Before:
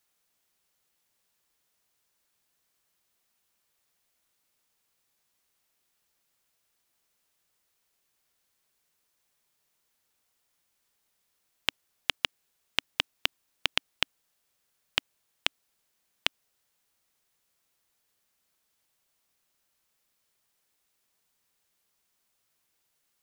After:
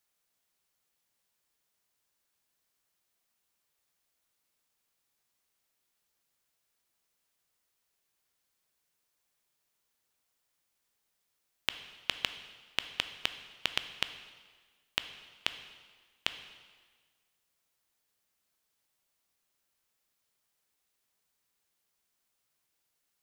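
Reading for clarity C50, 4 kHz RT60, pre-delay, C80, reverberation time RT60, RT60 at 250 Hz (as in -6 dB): 11.0 dB, 1.4 s, 7 ms, 12.5 dB, 1.5 s, 1.5 s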